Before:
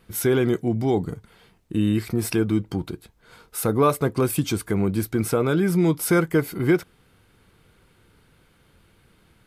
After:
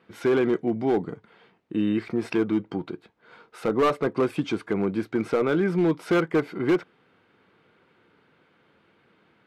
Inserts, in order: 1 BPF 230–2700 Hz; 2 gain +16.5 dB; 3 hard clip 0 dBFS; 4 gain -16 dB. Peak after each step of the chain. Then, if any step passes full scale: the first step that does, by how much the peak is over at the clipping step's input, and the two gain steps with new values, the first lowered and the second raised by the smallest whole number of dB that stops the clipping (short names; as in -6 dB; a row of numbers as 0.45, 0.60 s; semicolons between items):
-7.0, +9.5, 0.0, -16.0 dBFS; step 2, 9.5 dB; step 2 +6.5 dB, step 4 -6 dB